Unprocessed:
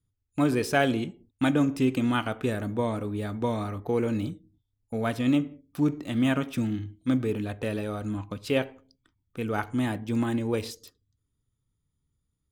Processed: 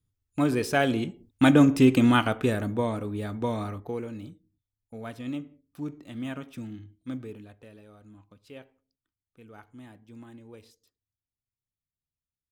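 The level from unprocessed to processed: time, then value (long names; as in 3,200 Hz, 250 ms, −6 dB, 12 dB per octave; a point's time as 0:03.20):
0:00.85 −0.5 dB
0:01.53 +6 dB
0:02.05 +6 dB
0:03.01 −1 dB
0:03.70 −1 dB
0:04.10 −10.5 dB
0:07.19 −10.5 dB
0:07.69 −20 dB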